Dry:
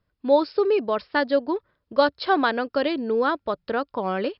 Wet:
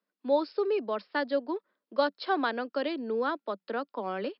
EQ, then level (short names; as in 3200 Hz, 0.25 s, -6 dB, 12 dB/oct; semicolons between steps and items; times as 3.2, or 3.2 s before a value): steep high-pass 190 Hz 96 dB/oct; -7.5 dB